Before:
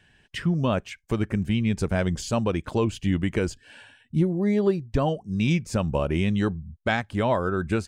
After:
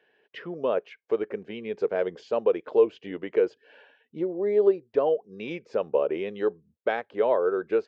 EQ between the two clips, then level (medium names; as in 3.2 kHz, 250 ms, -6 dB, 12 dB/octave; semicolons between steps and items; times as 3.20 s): Gaussian low-pass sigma 2.3 samples; resonant high-pass 450 Hz, resonance Q 4.9; -5.5 dB